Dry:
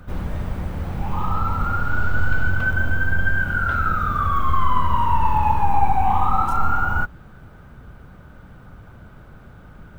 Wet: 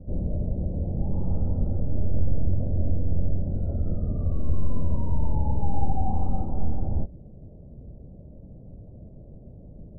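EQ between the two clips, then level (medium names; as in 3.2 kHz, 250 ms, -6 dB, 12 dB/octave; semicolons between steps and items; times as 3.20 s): elliptic low-pass 620 Hz, stop band 60 dB; 0.0 dB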